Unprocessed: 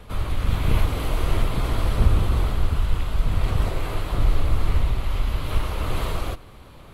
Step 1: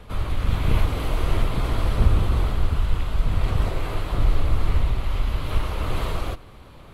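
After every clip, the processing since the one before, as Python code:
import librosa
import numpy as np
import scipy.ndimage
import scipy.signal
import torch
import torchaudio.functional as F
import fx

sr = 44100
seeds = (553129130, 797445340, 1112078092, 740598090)

y = fx.high_shelf(x, sr, hz=7600.0, db=-5.0)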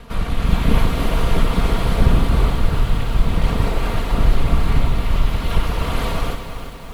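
y = fx.lower_of_two(x, sr, delay_ms=4.3)
y = fx.echo_crushed(y, sr, ms=340, feedback_pct=55, bits=8, wet_db=-9)
y = F.gain(torch.from_numpy(y), 6.0).numpy()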